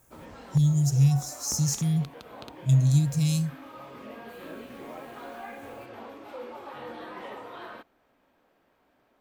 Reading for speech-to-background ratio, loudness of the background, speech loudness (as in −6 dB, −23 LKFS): 19.0 dB, −43.5 LKFS, −24.5 LKFS